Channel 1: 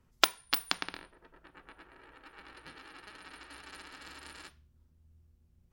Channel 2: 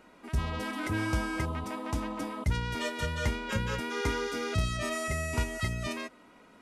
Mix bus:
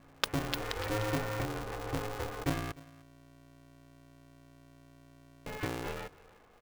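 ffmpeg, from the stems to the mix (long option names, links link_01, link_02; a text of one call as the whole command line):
ffmpeg -i stem1.wav -i stem2.wav -filter_complex "[0:a]aeval=exprs='sgn(val(0))*max(abs(val(0))-0.0224,0)':channel_layout=same,aeval=exprs='val(0)+0.00251*(sin(2*PI*60*n/s)+sin(2*PI*2*60*n/s)/2+sin(2*PI*3*60*n/s)/3+sin(2*PI*4*60*n/s)/4+sin(2*PI*5*60*n/s)/5)':channel_layout=same,volume=-7dB,asplit=2[link_01][link_02];[link_02]volume=-9.5dB[link_03];[1:a]lowpass=2400,adynamicequalizer=threshold=0.00501:dfrequency=300:dqfactor=1.2:tfrequency=300:tqfactor=1.2:attack=5:release=100:ratio=0.375:range=2.5:mode=boostabove:tftype=bell,volume=-5dB,asplit=3[link_04][link_05][link_06];[link_04]atrim=end=2.72,asetpts=PTS-STARTPTS,afade=type=out:start_time=2.716:duration=0.004:curve=hsin[link_07];[link_05]atrim=start=2.72:end=5.46,asetpts=PTS-STARTPTS,volume=0[link_08];[link_06]atrim=start=5.46,asetpts=PTS-STARTPTS,afade=type=in:duration=0.004:curve=hsin[link_09];[link_07][link_08][link_09]concat=n=3:v=0:a=1,asplit=2[link_10][link_11];[link_11]volume=-22.5dB[link_12];[link_03][link_12]amix=inputs=2:normalize=0,aecho=0:1:300:1[link_13];[link_01][link_10][link_13]amix=inputs=3:normalize=0,aeval=exprs='val(0)*sgn(sin(2*PI*210*n/s))':channel_layout=same" out.wav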